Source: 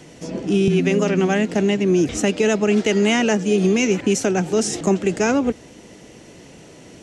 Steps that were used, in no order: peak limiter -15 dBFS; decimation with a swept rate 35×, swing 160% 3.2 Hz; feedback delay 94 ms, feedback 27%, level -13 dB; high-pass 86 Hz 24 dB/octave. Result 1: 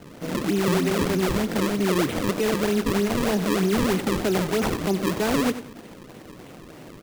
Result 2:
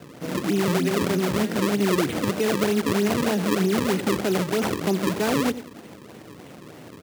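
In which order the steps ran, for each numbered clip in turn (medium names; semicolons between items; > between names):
high-pass > peak limiter > decimation with a swept rate > feedback delay; peak limiter > feedback delay > decimation with a swept rate > high-pass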